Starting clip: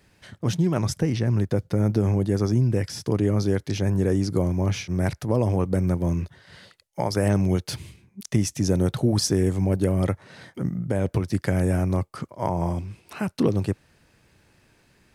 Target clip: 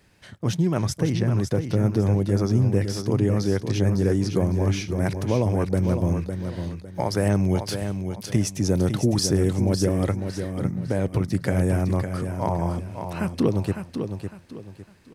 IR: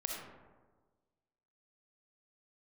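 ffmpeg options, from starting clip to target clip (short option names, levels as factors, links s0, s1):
-af "aecho=1:1:555|1110|1665|2220:0.422|0.131|0.0405|0.0126"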